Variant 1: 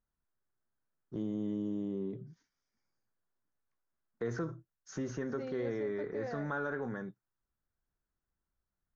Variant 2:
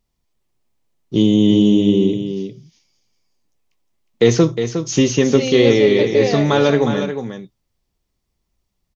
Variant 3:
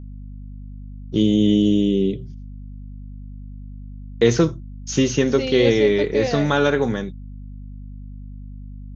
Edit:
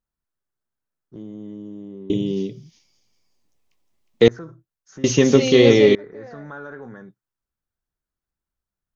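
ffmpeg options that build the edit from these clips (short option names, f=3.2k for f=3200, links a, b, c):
-filter_complex "[1:a]asplit=2[a][b];[0:a]asplit=3[c][d][e];[c]atrim=end=2.102[f];[a]atrim=start=2.098:end=4.282[g];[d]atrim=start=4.278:end=5.042[h];[b]atrim=start=5.038:end=5.952[i];[e]atrim=start=5.948[j];[f][g]acrossfade=d=0.004:c1=hsin:c2=hsin[k];[k][h]acrossfade=d=0.004:c1=hsin:c2=hsin[l];[l][i]acrossfade=d=0.004:c1=hsin:c2=hsin[m];[m][j]acrossfade=d=0.004:c1=hsin:c2=hsin"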